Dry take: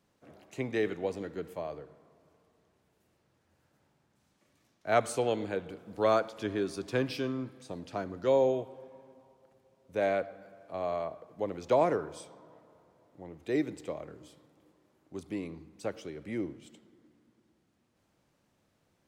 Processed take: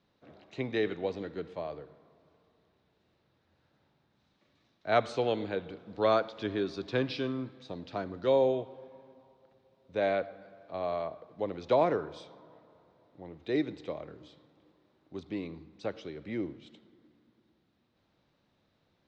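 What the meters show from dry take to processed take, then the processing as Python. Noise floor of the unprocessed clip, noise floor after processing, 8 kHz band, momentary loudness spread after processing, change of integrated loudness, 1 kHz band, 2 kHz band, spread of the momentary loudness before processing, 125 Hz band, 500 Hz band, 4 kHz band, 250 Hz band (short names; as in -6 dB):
-74 dBFS, -74 dBFS, under -10 dB, 19 LU, 0.0 dB, 0.0 dB, 0.0 dB, 19 LU, 0.0 dB, 0.0 dB, +3.0 dB, 0.0 dB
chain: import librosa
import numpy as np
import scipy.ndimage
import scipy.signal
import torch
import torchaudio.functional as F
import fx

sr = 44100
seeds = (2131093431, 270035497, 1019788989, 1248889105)

y = scipy.signal.sosfilt(scipy.signal.butter(4, 5000.0, 'lowpass', fs=sr, output='sos'), x)
y = fx.peak_eq(y, sr, hz=3800.0, db=7.5, octaves=0.25)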